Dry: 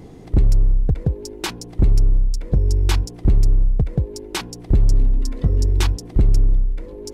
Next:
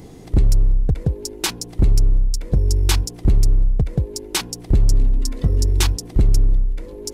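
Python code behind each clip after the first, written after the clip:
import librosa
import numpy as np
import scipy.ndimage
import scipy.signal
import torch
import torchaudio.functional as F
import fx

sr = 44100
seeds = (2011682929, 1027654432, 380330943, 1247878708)

y = fx.high_shelf(x, sr, hz=4100.0, db=10.0)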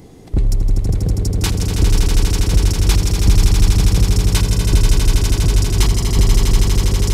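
y = fx.echo_swell(x, sr, ms=81, loudest=8, wet_db=-6.0)
y = y * 10.0 ** (-1.0 / 20.0)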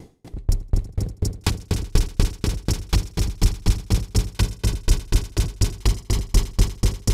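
y = fx.tremolo_decay(x, sr, direction='decaying', hz=4.1, depth_db=37)
y = y * 10.0 ** (2.0 / 20.0)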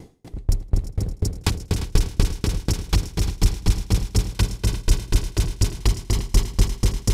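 y = x + 10.0 ** (-13.0 / 20.0) * np.pad(x, (int(349 * sr / 1000.0), 0))[:len(x)]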